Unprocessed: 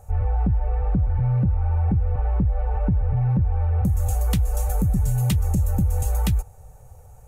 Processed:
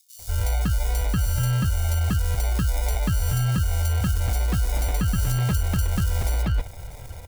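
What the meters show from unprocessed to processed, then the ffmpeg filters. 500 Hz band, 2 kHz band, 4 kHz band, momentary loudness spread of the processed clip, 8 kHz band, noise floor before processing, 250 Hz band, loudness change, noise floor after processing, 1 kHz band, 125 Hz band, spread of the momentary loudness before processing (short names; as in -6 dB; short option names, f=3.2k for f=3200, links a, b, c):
-1.0 dB, +10.0 dB, +7.5 dB, 3 LU, +5.0 dB, -46 dBFS, -3.0 dB, -1.5 dB, -41 dBFS, -0.5 dB, -2.0 dB, 3 LU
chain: -filter_complex "[0:a]areverse,acompressor=threshold=-29dB:ratio=4,areverse,acrusher=samples=30:mix=1:aa=0.000001,highshelf=f=4.4k:g=11,acrossover=split=4100[a][b];[a]adelay=190[c];[c][b]amix=inputs=2:normalize=0,dynaudnorm=f=180:g=3:m=4dB,volume=3.5dB"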